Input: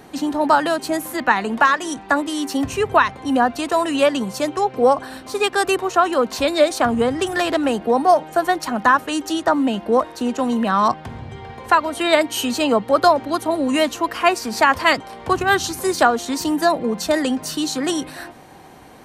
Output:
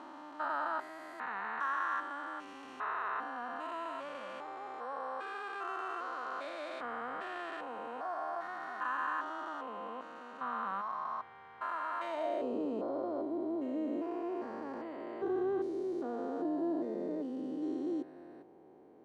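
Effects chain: spectrogram pixelated in time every 400 ms; band-pass sweep 1.3 kHz -> 380 Hz, 11.98–12.54 s; trim -6 dB

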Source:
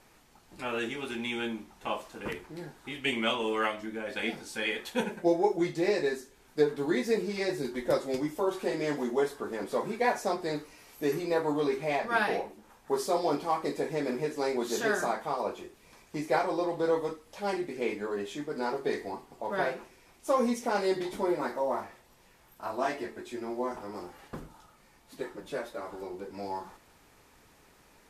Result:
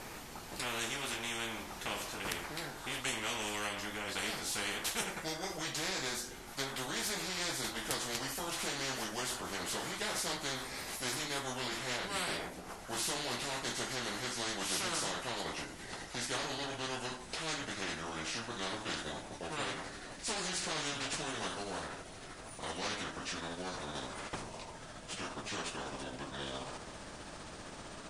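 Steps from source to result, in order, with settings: pitch bend over the whole clip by -6.5 st starting unshifted; spectrum-flattening compressor 4:1

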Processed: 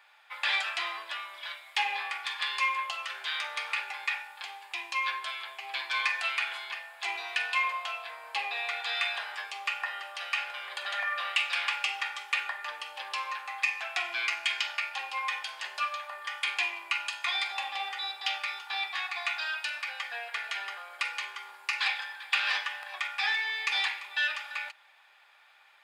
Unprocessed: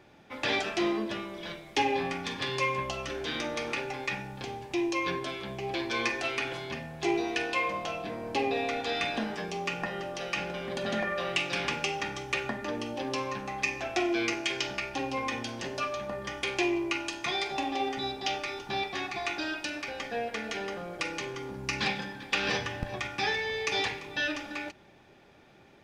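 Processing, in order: high-pass 970 Hz 24 dB/octave; peaking EQ 5.9 kHz -12 dB 0.33 oct; in parallel at -6.5 dB: saturation -24.5 dBFS, distortion -17 dB

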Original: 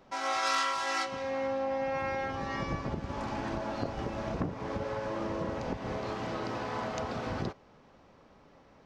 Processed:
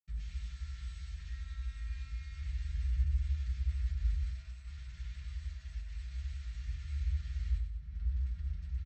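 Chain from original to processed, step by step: rattle on loud lows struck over -40 dBFS, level -29 dBFS; 4.24–6.46 s: high-pass 920 Hz 12 dB/octave; upward compressor, threshold -36 dBFS; peak limiter -28 dBFS, peak gain reduction 10.5 dB; compression 8:1, threshold -39 dBFS, peak gain reduction 7 dB; integer overflow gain 39 dB; feedback delay 96 ms, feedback 49%, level -8 dB; reverberation, pre-delay 77 ms; trim +16.5 dB

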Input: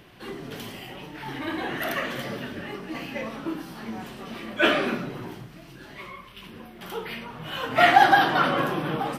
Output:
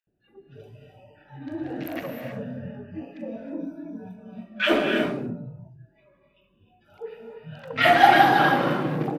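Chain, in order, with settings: local Wiener filter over 41 samples; spectral noise reduction 22 dB; 3.28–4.12 s: rippled EQ curve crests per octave 1.6, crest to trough 17 dB; three bands offset in time mids, highs, lows 40/70 ms, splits 1.3/6 kHz; gated-style reverb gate 340 ms rising, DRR 3.5 dB; trim +2 dB

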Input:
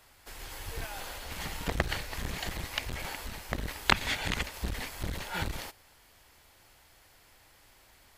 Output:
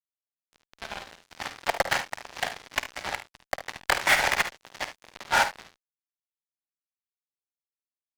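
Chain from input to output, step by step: low-pass 1.8 kHz 12 dB/octave; in parallel at -7 dB: saturation -19 dBFS, distortion -13 dB; on the sum: rippled Chebyshev high-pass 540 Hz, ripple 3 dB; fuzz box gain 36 dB, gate -38 dBFS; on a send: early reflections 51 ms -8.5 dB, 74 ms -9.5 dB; on the sum: upward expansion 1.5:1, over -35 dBFS

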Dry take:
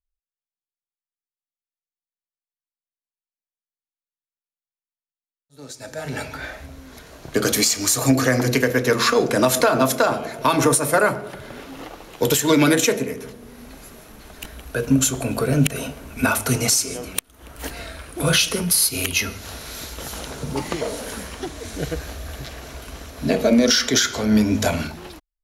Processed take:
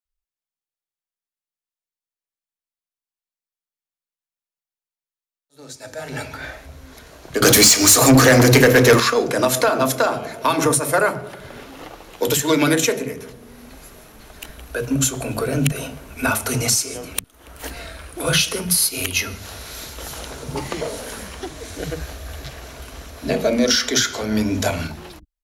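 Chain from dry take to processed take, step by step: bands offset in time highs, lows 50 ms, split 230 Hz; 7.42–9.00 s: waveshaping leveller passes 3

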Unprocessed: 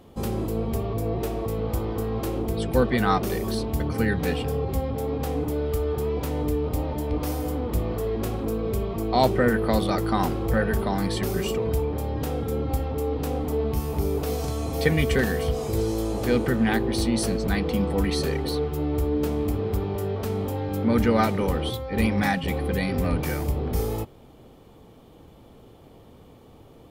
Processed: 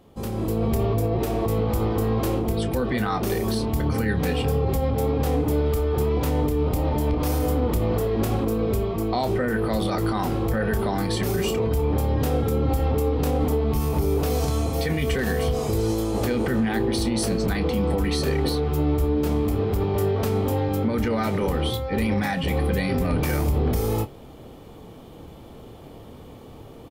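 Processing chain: level rider gain up to 10 dB; peak limiter -11.5 dBFS, peak gain reduction 9.5 dB; doubling 28 ms -11 dB; trim -3.5 dB

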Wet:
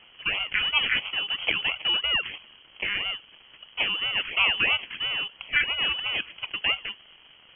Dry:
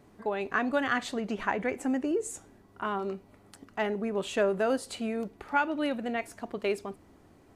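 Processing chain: decimation with a swept rate 24×, swing 60% 3 Hz; crackle 310 per s -42 dBFS; frequency inversion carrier 3.2 kHz; trim +3.5 dB

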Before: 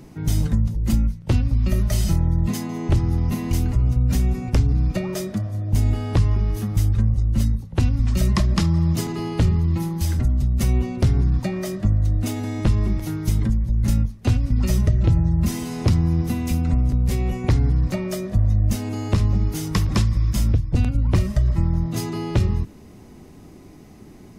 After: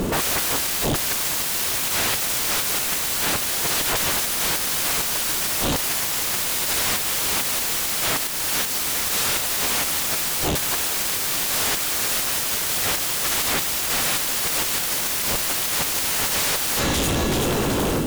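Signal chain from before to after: rattle on loud lows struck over -23 dBFS, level -26 dBFS; painted sound fall, 11.16–11.53 s, 910–8600 Hz -23 dBFS; speed mistake 33 rpm record played at 45 rpm; in parallel at 0 dB: peak limiter -16.5 dBFS, peak gain reduction 8.5 dB; on the sum: feedback echo behind a high-pass 381 ms, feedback 42%, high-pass 2 kHz, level -4 dB; modulation noise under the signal 15 dB; level rider gain up to 7 dB; on a send at -17 dB: reverberation RT60 3.1 s, pre-delay 78 ms; on the sum: sine folder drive 18 dB, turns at -11.5 dBFS; trim -6.5 dB

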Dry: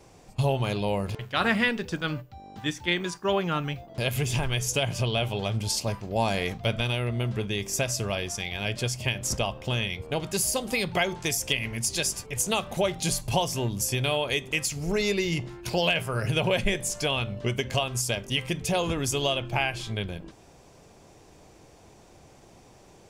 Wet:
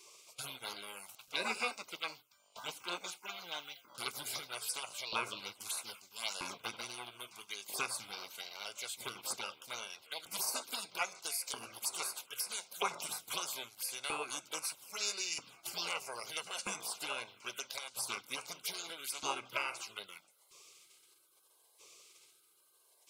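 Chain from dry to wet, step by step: LFO high-pass saw up 0.78 Hz 790–2400 Hz; touch-sensitive phaser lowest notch 220 Hz, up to 3.2 kHz, full sweep at -25 dBFS; spectral gate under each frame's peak -15 dB weak; in parallel at -8 dB: saturation -31 dBFS, distortion -17 dB; on the sum: Butterworth band-stop 1.8 kHz, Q 3.7; trim +2 dB

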